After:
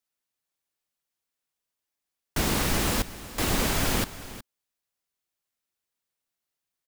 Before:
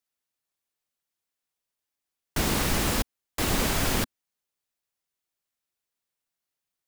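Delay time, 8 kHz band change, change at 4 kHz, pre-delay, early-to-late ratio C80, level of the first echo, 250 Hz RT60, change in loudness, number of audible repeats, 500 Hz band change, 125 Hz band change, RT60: 0.366 s, 0.0 dB, 0.0 dB, none, none, -15.5 dB, none, 0.0 dB, 1, 0.0 dB, 0.0 dB, none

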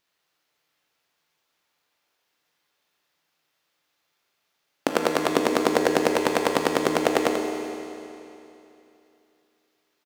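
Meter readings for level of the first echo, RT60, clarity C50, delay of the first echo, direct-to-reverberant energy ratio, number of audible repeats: -7.5 dB, 2.9 s, 1.0 dB, 87 ms, 0.0 dB, 1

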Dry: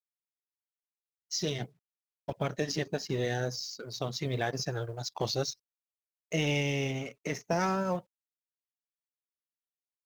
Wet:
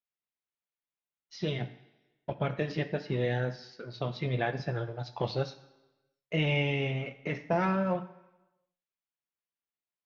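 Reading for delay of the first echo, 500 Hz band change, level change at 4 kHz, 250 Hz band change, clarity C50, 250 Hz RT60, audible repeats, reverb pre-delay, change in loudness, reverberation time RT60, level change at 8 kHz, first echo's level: none, +1.0 dB, -4.0 dB, +1.0 dB, 13.5 dB, 0.95 s, none, 3 ms, +0.5 dB, 1.1 s, under -20 dB, none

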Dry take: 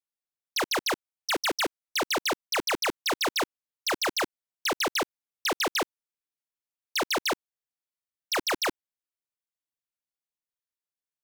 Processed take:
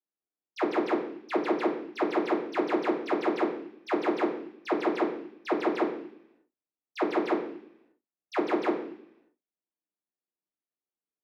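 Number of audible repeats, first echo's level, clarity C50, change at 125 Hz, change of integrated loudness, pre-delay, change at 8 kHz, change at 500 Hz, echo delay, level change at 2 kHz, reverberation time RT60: none, none, 7.5 dB, n/a, -1.0 dB, 3 ms, under -25 dB, +4.5 dB, none, -7.0 dB, 0.70 s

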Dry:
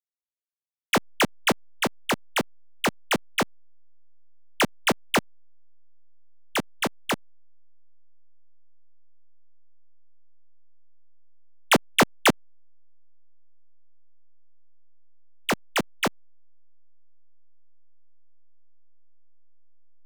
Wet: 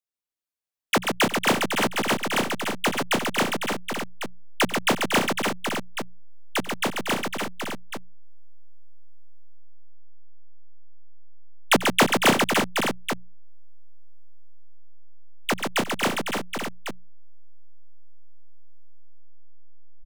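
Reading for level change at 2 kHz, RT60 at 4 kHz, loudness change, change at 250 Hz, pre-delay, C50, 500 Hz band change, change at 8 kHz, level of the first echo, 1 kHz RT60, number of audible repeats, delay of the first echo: +3.0 dB, none, +1.5 dB, +3.0 dB, none, none, +3.0 dB, +3.0 dB, -17.5 dB, none, 6, 90 ms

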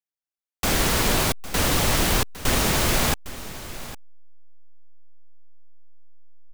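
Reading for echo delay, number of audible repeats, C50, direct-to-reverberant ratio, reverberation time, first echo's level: 0.807 s, 1, none, none, none, -15.5 dB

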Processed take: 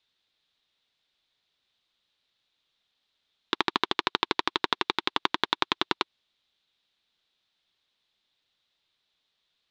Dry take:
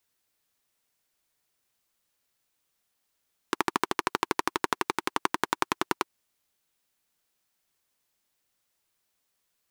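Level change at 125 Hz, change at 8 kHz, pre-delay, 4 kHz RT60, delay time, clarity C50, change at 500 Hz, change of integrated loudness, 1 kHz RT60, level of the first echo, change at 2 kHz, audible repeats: -1.0 dB, -9.5 dB, none, none, none, none, -1.0 dB, +2.0 dB, none, none, +1.5 dB, none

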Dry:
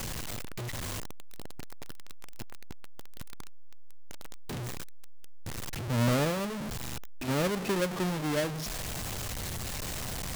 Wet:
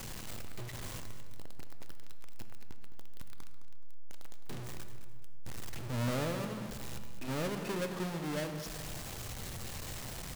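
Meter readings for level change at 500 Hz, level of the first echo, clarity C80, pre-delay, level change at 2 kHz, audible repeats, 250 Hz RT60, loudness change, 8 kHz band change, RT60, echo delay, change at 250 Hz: -6.5 dB, -12.0 dB, 8.0 dB, 6 ms, -6.5 dB, 3, 2.0 s, -6.5 dB, -7.0 dB, 1.7 s, 0.212 s, -6.5 dB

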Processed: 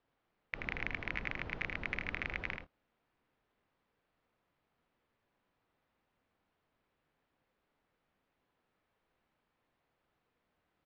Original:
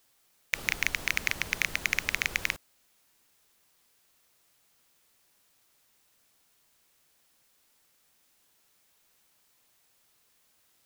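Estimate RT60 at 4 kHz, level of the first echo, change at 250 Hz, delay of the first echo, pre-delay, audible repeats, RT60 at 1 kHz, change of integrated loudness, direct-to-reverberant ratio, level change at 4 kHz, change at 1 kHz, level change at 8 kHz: none, -5.0 dB, -1.0 dB, 80 ms, none, 1, none, -10.0 dB, none, -15.5 dB, -5.0 dB, under -30 dB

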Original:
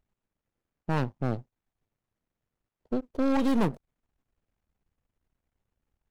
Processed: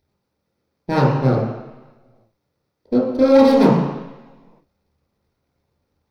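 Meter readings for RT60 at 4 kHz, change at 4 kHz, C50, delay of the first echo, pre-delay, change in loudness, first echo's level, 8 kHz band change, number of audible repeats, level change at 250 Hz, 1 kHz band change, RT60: 1.3 s, +12.5 dB, 1.0 dB, none, 19 ms, +13.0 dB, none, n/a, none, +11.5 dB, +13.0 dB, 1.1 s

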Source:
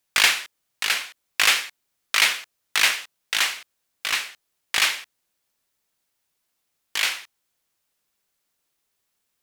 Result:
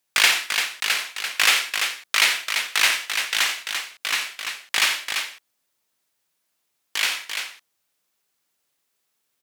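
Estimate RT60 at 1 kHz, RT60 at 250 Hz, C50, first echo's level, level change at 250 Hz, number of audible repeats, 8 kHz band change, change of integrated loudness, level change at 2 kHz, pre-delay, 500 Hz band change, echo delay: none, none, none, -9.5 dB, +1.0 dB, 3, +1.5 dB, +0.5 dB, +1.5 dB, none, +1.5 dB, 55 ms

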